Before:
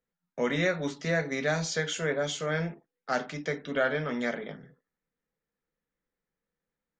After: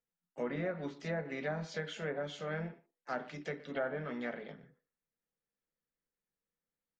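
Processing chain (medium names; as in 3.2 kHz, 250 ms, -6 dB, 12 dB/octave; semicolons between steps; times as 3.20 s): speakerphone echo 120 ms, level -18 dB; harmony voices +4 st -13 dB; low-pass that closes with the level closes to 1.3 kHz, closed at -23 dBFS; trim -8.5 dB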